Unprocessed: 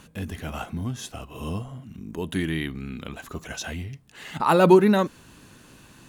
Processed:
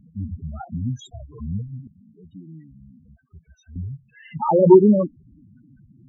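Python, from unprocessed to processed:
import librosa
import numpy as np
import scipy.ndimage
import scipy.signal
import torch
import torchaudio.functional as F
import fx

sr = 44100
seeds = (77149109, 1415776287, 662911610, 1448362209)

y = fx.spec_topn(x, sr, count=4)
y = fx.tone_stack(y, sr, knobs='10-0-1', at=(1.87, 3.76))
y = y * librosa.db_to_amplitude(5.0)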